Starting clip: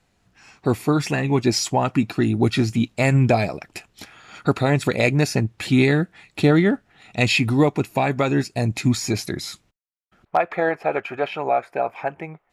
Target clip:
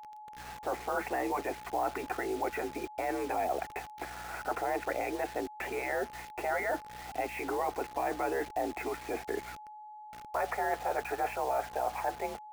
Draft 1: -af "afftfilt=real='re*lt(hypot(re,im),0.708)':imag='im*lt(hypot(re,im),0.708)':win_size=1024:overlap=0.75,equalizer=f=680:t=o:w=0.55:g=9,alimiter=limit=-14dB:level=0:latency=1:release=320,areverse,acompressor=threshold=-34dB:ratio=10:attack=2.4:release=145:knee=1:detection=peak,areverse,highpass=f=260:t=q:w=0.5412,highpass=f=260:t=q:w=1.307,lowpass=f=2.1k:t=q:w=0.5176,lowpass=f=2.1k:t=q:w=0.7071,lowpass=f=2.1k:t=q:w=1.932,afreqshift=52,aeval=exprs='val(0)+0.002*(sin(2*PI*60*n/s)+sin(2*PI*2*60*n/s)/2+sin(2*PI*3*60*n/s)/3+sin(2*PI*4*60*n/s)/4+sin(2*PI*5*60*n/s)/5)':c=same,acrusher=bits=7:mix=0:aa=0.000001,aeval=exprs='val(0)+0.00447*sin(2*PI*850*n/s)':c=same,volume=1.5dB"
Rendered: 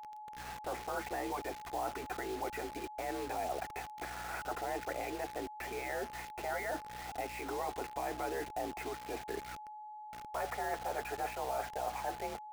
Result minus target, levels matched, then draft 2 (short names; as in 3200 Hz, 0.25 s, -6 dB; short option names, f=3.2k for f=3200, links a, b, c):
compressor: peak gain reduction +6 dB
-af "afftfilt=real='re*lt(hypot(re,im),0.708)':imag='im*lt(hypot(re,im),0.708)':win_size=1024:overlap=0.75,equalizer=f=680:t=o:w=0.55:g=9,alimiter=limit=-14dB:level=0:latency=1:release=320,areverse,acompressor=threshold=-27.5dB:ratio=10:attack=2.4:release=145:knee=1:detection=peak,areverse,highpass=f=260:t=q:w=0.5412,highpass=f=260:t=q:w=1.307,lowpass=f=2.1k:t=q:w=0.5176,lowpass=f=2.1k:t=q:w=0.7071,lowpass=f=2.1k:t=q:w=1.932,afreqshift=52,aeval=exprs='val(0)+0.002*(sin(2*PI*60*n/s)+sin(2*PI*2*60*n/s)/2+sin(2*PI*3*60*n/s)/3+sin(2*PI*4*60*n/s)/4+sin(2*PI*5*60*n/s)/5)':c=same,acrusher=bits=7:mix=0:aa=0.000001,aeval=exprs='val(0)+0.00447*sin(2*PI*850*n/s)':c=same,volume=1.5dB"